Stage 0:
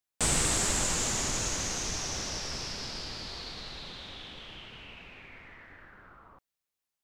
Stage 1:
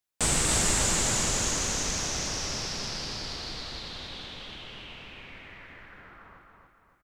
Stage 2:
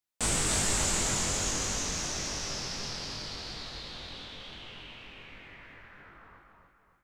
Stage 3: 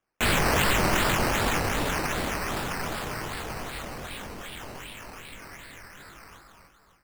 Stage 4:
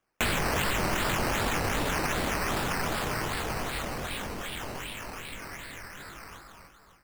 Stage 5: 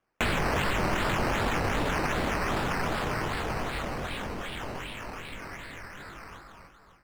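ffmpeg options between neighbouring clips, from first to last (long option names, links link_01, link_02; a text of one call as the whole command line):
ffmpeg -i in.wav -af "aecho=1:1:281|562|843|1124|1405|1686:0.631|0.29|0.134|0.0614|0.0283|0.013,volume=1.5dB" out.wav
ffmpeg -i in.wav -af "flanger=delay=20:depth=2.6:speed=2.8" out.wav
ffmpeg -i in.wav -af "acrusher=samples=10:mix=1:aa=0.000001:lfo=1:lforange=6:lforate=2.6,volume=5.5dB" out.wav
ffmpeg -i in.wav -af "acompressor=threshold=-28dB:ratio=5,volume=3dB" out.wav
ffmpeg -i in.wav -af "lowpass=frequency=3000:poles=1,volume=1.5dB" out.wav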